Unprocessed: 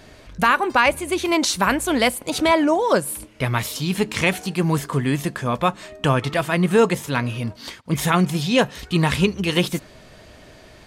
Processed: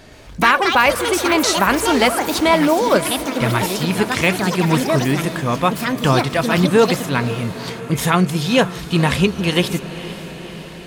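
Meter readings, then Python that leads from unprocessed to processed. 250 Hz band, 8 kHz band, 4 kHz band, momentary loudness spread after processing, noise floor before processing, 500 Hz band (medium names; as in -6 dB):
+3.5 dB, +4.0 dB, +4.5 dB, 10 LU, -46 dBFS, +3.5 dB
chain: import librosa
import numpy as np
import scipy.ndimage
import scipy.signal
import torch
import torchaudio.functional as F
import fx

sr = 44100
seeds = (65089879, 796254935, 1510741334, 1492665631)

y = fx.echo_diffused(x, sr, ms=493, feedback_pct=66, wet_db=-14)
y = fx.echo_pitch(y, sr, ms=119, semitones=6, count=2, db_per_echo=-6.0)
y = F.gain(torch.from_numpy(y), 2.5).numpy()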